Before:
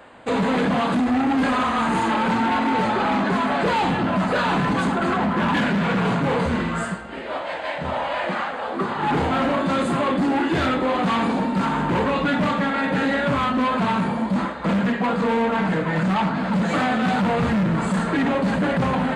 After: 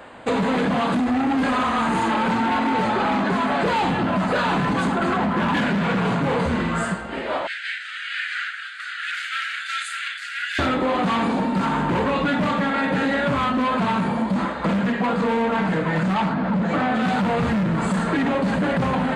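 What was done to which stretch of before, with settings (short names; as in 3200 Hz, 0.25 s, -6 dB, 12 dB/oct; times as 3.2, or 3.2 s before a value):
7.47–10.59 steep high-pass 1400 Hz 96 dB/oct
16.33–16.94 LPF 1400 Hz -> 2300 Hz 6 dB/oct
whole clip: compressor, threshold -23 dBFS; gain +4 dB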